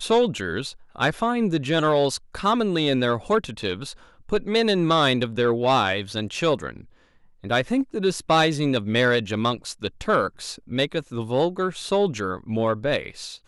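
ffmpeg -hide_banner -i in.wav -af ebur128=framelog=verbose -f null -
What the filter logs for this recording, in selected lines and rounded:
Integrated loudness:
  I:         -23.1 LUFS
  Threshold: -33.5 LUFS
Loudness range:
  LRA:         2.3 LU
  Threshold: -43.3 LUFS
  LRA low:   -24.9 LUFS
  LRA high:  -22.5 LUFS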